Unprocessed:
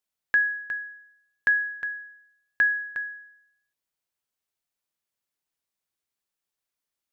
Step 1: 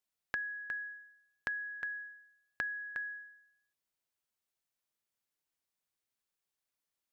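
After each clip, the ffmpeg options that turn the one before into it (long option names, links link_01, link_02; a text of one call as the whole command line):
ffmpeg -i in.wav -af "acompressor=threshold=-33dB:ratio=6,volume=-3dB" out.wav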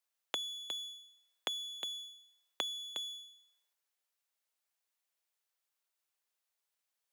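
ffmpeg -i in.wav -af "aeval=exprs='abs(val(0))':channel_layout=same,highpass=400,afreqshift=82,volume=5.5dB" out.wav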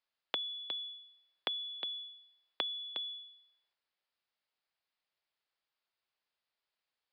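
ffmpeg -i in.wav -af "aresample=11025,aresample=44100,volume=1.5dB" out.wav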